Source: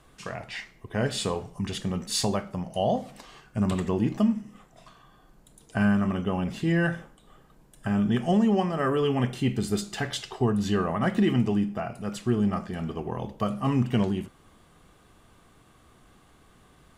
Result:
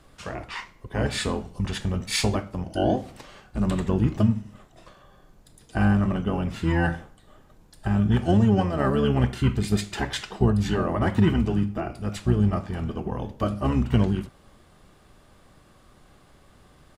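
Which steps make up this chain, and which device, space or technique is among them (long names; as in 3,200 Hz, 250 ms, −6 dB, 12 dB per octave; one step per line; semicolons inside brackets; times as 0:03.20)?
octave pedal (pitch-shifted copies added −12 semitones −1 dB)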